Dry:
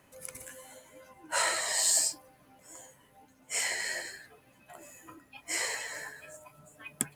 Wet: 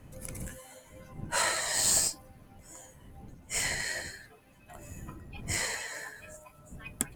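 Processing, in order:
wind on the microphone 150 Hz −47 dBFS
harmonic generator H 8 −24 dB, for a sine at −7.5 dBFS

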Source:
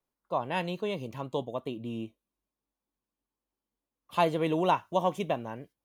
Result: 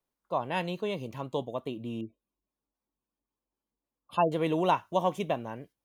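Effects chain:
0:02.01–0:04.32: gate on every frequency bin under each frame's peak −20 dB strong

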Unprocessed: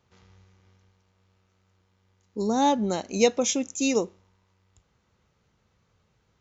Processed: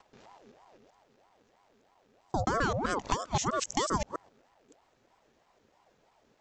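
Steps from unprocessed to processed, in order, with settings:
reversed piece by piece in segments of 130 ms
downward compressor 10 to 1, threshold −27 dBFS, peak gain reduction 12.5 dB
ring modulator whose carrier an LFO sweeps 610 Hz, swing 50%, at 3.1 Hz
level +4 dB

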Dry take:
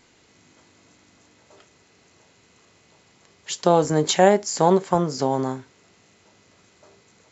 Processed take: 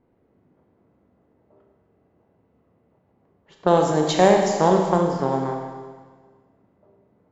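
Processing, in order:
harmonic generator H 2 −19 dB, 7 −31 dB, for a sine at −3 dBFS
low-pass that shuts in the quiet parts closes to 650 Hz, open at −14 dBFS
four-comb reverb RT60 1.6 s, combs from 29 ms, DRR 2 dB
level −1.5 dB

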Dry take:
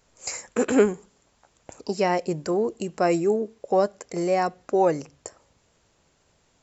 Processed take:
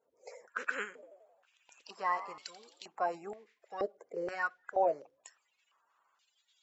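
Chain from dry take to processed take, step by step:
spectral magnitudes quantised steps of 30 dB
tilt shelving filter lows −6.5 dB, about 880 Hz
0:00.85–0:02.87: echo with shifted repeats 87 ms, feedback 58%, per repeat +60 Hz, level −14 dB
band-pass on a step sequencer 2.1 Hz 470–3,600 Hz

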